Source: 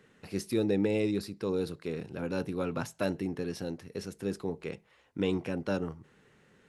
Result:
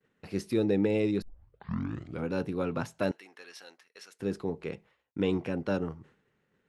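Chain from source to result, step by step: 1.22 s: tape start 1.06 s; 3.11–4.20 s: high-pass 1.3 kHz 12 dB/octave; expander -53 dBFS; treble shelf 5.9 kHz -10 dB; trim +1.5 dB

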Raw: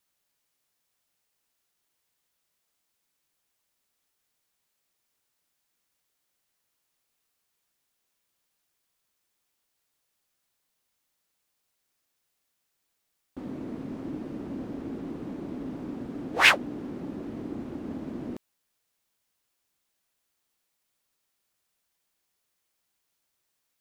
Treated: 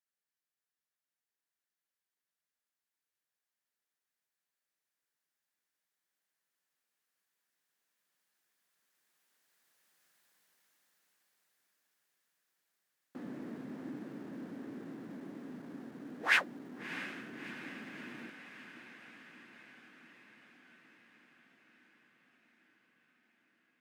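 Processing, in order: Doppler pass-by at 10.16 s, 10 m/s, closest 7.7 m; vibrato 9.8 Hz 26 cents; in parallel at -11 dB: Schmitt trigger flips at -58 dBFS; on the sum: high-pass 140 Hz 24 dB/octave; peaking EQ 1.7 kHz +8.5 dB 0.56 oct; on a send: echo that smears into a reverb 658 ms, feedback 69%, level -12.5 dB; on the sum: trim +4.5 dB

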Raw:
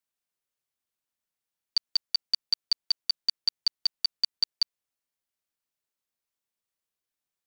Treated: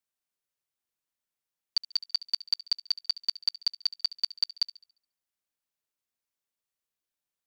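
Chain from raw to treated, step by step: feedback echo behind a high-pass 70 ms, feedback 39%, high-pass 2.1 kHz, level -17 dB; trim -2 dB

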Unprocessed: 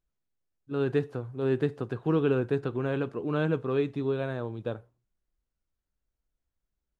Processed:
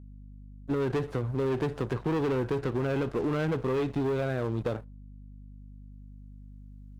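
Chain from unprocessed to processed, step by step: recorder AGC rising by 6.8 dB/s; waveshaping leveller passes 3; hum 50 Hz, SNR 20 dB; compression, threshold -23 dBFS, peak gain reduction 6 dB; Chebyshev shaper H 6 -24 dB, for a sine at -16.5 dBFS; trim -3 dB

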